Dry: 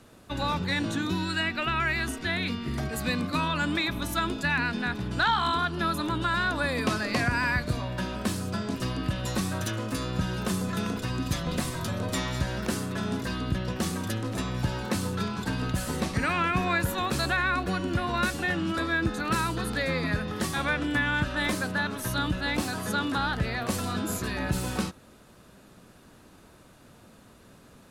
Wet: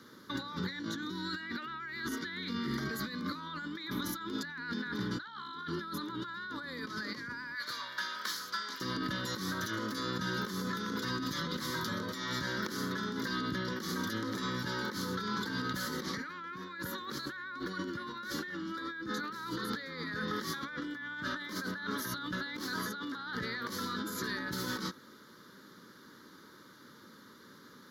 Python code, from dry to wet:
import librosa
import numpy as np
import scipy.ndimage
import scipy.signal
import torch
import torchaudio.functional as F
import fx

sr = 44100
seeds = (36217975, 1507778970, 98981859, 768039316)

y = fx.highpass(x, sr, hz=fx.steps((0.0, 230.0), (7.55, 1100.0), (8.81, 270.0)), slope=12)
y = fx.over_compress(y, sr, threshold_db=-36.0, ratio=-1.0)
y = fx.fixed_phaser(y, sr, hz=2600.0, stages=6)